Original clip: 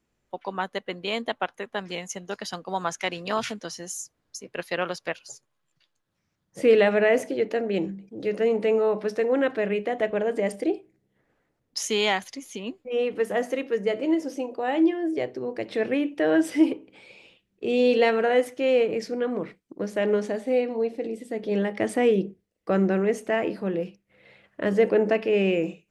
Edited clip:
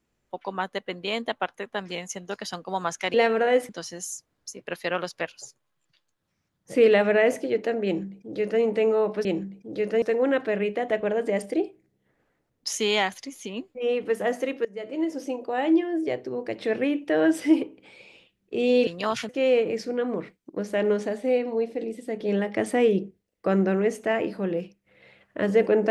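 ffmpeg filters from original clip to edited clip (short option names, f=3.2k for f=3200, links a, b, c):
-filter_complex "[0:a]asplit=8[a][b][c][d][e][f][g][h];[a]atrim=end=3.142[i];[b]atrim=start=17.968:end=18.522[j];[c]atrim=start=3.558:end=9.122[k];[d]atrim=start=7.718:end=8.492[l];[e]atrim=start=9.118:end=13.75,asetpts=PTS-STARTPTS,afade=t=out:st=4.628:d=0.004:c=hsin:silence=0.1[m];[f]atrim=start=13.75:end=17.972,asetpts=PTS-STARTPTS,afade=t=in:d=0.6:silence=0.1[n];[g]atrim=start=3.138:end=3.562[o];[h]atrim=start=18.518[p];[i][j]acrossfade=d=0.004:c1=hsin:c2=hsin[q];[q][k]acrossfade=d=0.004:c1=hsin:c2=hsin[r];[r][l]acrossfade=d=0.004:c1=hsin:c2=hsin[s];[m][n]concat=n=2:v=0:a=1[t];[s][t]acrossfade=d=0.004:c1=hsin:c2=hsin[u];[u][o]acrossfade=d=0.004:c1=hsin:c2=hsin[v];[v][p]acrossfade=d=0.004:c1=hsin:c2=hsin"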